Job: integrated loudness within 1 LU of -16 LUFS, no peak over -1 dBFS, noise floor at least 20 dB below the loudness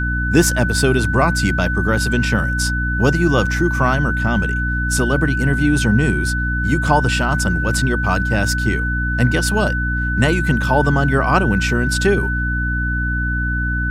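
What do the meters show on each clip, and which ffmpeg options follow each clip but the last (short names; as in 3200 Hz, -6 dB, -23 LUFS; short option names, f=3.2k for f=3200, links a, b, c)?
hum 60 Hz; harmonics up to 300 Hz; hum level -19 dBFS; steady tone 1500 Hz; tone level -21 dBFS; loudness -17.5 LUFS; peak -1.0 dBFS; loudness target -16.0 LUFS
-> -af "bandreject=f=60:t=h:w=6,bandreject=f=120:t=h:w=6,bandreject=f=180:t=h:w=6,bandreject=f=240:t=h:w=6,bandreject=f=300:t=h:w=6"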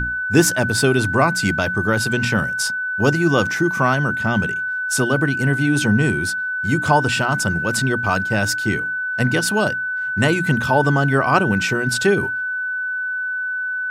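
hum none; steady tone 1500 Hz; tone level -21 dBFS
-> -af "bandreject=f=1.5k:w=30"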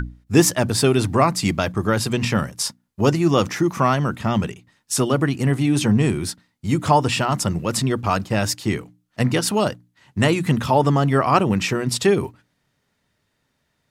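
steady tone none; loudness -20.0 LUFS; peak -2.5 dBFS; loudness target -16.0 LUFS
-> -af "volume=4dB,alimiter=limit=-1dB:level=0:latency=1"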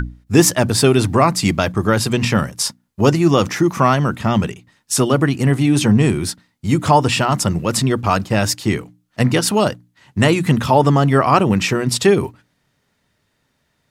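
loudness -16.5 LUFS; peak -1.0 dBFS; noise floor -67 dBFS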